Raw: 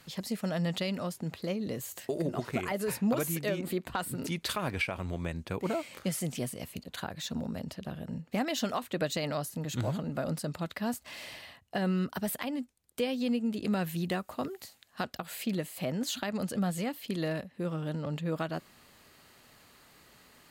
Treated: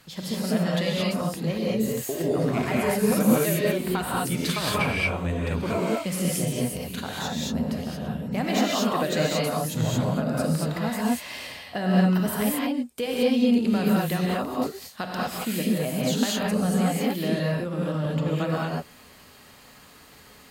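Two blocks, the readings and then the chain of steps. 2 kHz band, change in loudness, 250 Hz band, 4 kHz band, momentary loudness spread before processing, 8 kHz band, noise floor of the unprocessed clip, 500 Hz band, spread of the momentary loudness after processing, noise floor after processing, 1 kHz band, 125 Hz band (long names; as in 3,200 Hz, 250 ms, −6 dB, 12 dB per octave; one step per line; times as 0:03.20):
+8.0 dB, +8.5 dB, +9.0 dB, +8.0 dB, 8 LU, +8.0 dB, −63 dBFS, +8.5 dB, 8 LU, −50 dBFS, +9.0 dB, +9.0 dB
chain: reverb whose tail is shaped and stops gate 250 ms rising, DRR −5 dB
level +2 dB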